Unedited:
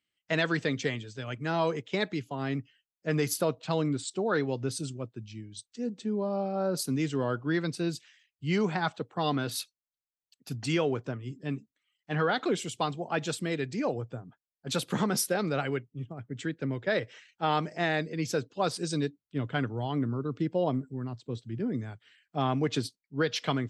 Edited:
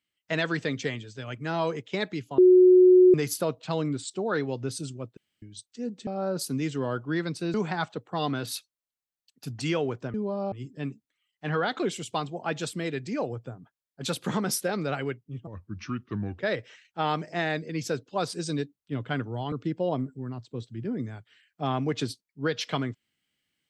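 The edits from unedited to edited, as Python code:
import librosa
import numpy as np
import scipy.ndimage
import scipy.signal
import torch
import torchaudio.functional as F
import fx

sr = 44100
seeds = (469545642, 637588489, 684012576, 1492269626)

y = fx.edit(x, sr, fx.bleep(start_s=2.38, length_s=0.76, hz=366.0, db=-12.0),
    fx.room_tone_fill(start_s=5.17, length_s=0.25),
    fx.move(start_s=6.07, length_s=0.38, to_s=11.18),
    fx.cut(start_s=7.92, length_s=0.66),
    fx.speed_span(start_s=16.13, length_s=0.7, speed=0.76),
    fx.cut(start_s=19.96, length_s=0.31), tone=tone)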